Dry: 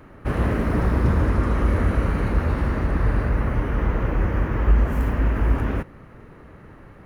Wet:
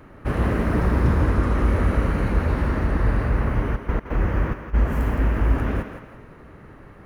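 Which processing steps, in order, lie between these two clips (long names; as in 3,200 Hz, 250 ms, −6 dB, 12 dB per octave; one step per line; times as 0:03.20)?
0:03.75–0:04.73: gate pattern "x.xxxx..." 139 BPM −24 dB
feedback echo with a high-pass in the loop 167 ms, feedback 40%, high-pass 220 Hz, level −8 dB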